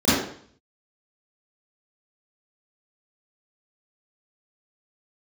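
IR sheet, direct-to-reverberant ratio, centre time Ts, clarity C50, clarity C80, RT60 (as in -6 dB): -13.0 dB, 79 ms, -2.5 dB, 2.5 dB, 0.55 s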